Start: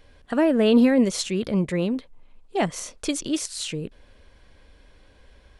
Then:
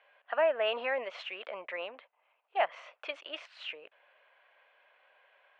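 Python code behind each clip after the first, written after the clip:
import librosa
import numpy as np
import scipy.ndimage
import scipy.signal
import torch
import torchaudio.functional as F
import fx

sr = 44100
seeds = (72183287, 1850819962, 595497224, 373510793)

y = scipy.signal.sosfilt(scipy.signal.cheby1(3, 1.0, [630.0, 2800.0], 'bandpass', fs=sr, output='sos'), x)
y = F.gain(torch.from_numpy(y), -2.0).numpy()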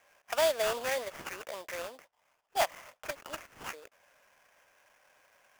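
y = fx.sample_hold(x, sr, seeds[0], rate_hz=4100.0, jitter_pct=20)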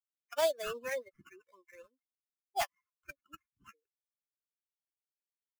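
y = fx.bin_expand(x, sr, power=3.0)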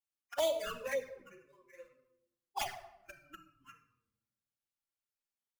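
y = fx.room_shoebox(x, sr, seeds[1], volume_m3=2800.0, walls='furnished', distance_m=2.3)
y = fx.env_flanger(y, sr, rest_ms=8.7, full_db=-28.0)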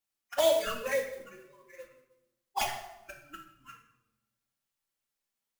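y = fx.rev_double_slope(x, sr, seeds[2], early_s=0.58, late_s=1.8, knee_db=-26, drr_db=4.5)
y = fx.mod_noise(y, sr, seeds[3], snr_db=18)
y = F.gain(torch.from_numpy(y), 5.0).numpy()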